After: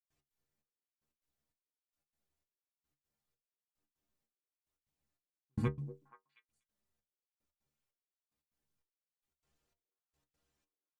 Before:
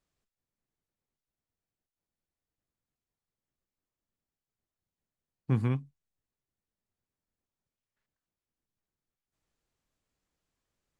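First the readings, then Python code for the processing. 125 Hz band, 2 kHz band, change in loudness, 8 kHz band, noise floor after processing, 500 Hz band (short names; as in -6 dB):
-9.0 dB, -4.5 dB, -8.5 dB, n/a, under -85 dBFS, -4.0 dB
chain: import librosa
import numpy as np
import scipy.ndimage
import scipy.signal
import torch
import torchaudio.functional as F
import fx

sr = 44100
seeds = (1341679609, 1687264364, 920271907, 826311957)

p1 = fx.step_gate(x, sr, bpm=148, pattern='.x.xxx...', floor_db=-60.0, edge_ms=4.5)
p2 = fx.stiff_resonator(p1, sr, f0_hz=70.0, decay_s=0.24, stiffness=0.008)
p3 = p2 + fx.echo_stepped(p2, sr, ms=239, hz=420.0, octaves=1.4, feedback_pct=70, wet_db=-11, dry=0)
y = p3 * librosa.db_to_amplitude(8.0)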